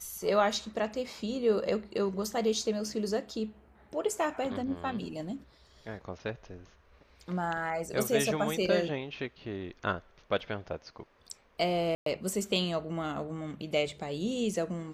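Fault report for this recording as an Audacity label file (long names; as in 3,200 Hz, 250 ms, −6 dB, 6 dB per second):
11.950000	12.060000	drop-out 113 ms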